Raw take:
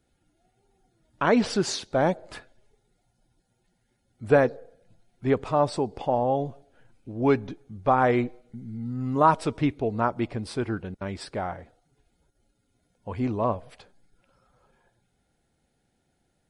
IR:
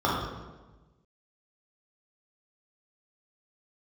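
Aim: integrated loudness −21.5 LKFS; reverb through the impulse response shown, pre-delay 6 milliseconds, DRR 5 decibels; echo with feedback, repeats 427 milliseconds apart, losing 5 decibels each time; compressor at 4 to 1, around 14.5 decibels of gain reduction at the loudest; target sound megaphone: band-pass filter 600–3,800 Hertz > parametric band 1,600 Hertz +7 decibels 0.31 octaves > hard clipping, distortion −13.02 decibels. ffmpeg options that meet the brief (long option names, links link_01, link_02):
-filter_complex "[0:a]acompressor=threshold=-31dB:ratio=4,aecho=1:1:427|854|1281|1708|2135|2562|2989:0.562|0.315|0.176|0.0988|0.0553|0.031|0.0173,asplit=2[link_01][link_02];[1:a]atrim=start_sample=2205,adelay=6[link_03];[link_02][link_03]afir=irnorm=-1:irlink=0,volume=-21.5dB[link_04];[link_01][link_04]amix=inputs=2:normalize=0,highpass=600,lowpass=3800,equalizer=frequency=1600:width_type=o:width=0.31:gain=7,asoftclip=type=hard:threshold=-29.5dB,volume=17.5dB"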